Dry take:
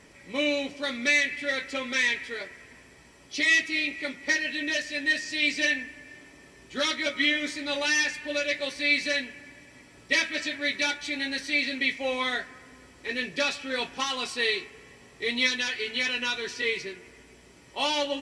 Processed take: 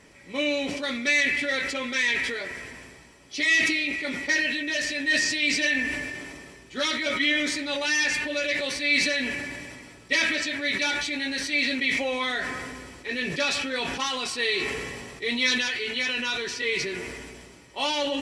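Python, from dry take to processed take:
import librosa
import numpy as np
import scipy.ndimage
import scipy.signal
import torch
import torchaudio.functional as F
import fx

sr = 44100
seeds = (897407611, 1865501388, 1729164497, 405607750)

y = fx.sustainer(x, sr, db_per_s=29.0)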